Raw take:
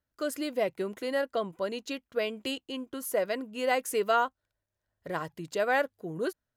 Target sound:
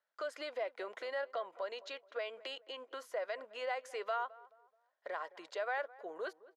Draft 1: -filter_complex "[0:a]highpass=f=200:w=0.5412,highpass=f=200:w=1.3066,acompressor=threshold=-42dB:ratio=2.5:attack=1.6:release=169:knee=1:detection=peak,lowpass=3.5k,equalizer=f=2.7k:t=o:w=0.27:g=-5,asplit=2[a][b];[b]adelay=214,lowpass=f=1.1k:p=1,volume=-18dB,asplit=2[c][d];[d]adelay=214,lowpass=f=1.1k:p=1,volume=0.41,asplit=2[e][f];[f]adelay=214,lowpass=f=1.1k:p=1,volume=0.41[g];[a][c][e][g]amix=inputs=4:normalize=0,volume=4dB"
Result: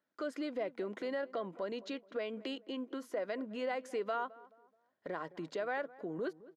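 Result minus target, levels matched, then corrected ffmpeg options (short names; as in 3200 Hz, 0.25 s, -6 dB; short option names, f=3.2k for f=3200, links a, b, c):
250 Hz band +15.5 dB
-filter_complex "[0:a]highpass=f=560:w=0.5412,highpass=f=560:w=1.3066,acompressor=threshold=-42dB:ratio=2.5:attack=1.6:release=169:knee=1:detection=peak,lowpass=3.5k,equalizer=f=2.7k:t=o:w=0.27:g=-5,asplit=2[a][b];[b]adelay=214,lowpass=f=1.1k:p=1,volume=-18dB,asplit=2[c][d];[d]adelay=214,lowpass=f=1.1k:p=1,volume=0.41,asplit=2[e][f];[f]adelay=214,lowpass=f=1.1k:p=1,volume=0.41[g];[a][c][e][g]amix=inputs=4:normalize=0,volume=4dB"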